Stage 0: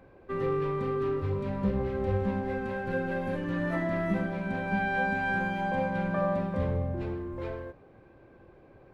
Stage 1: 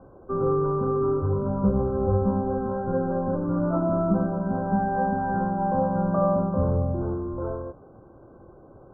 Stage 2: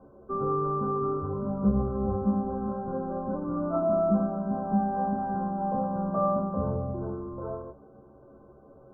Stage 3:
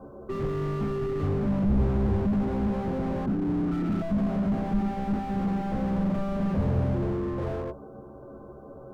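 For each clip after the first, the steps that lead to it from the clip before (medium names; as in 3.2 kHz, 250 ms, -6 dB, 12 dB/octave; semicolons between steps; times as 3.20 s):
Chebyshev low-pass 1.5 kHz, order 10; trim +6.5 dB
inharmonic resonator 67 Hz, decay 0.21 s, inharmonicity 0.008; small resonant body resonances 230/420/590/1100 Hz, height 7 dB
time-frequency box 3.26–4.02 s, 430–1200 Hz -28 dB; slew-rate limiter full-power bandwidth 5.7 Hz; trim +8.5 dB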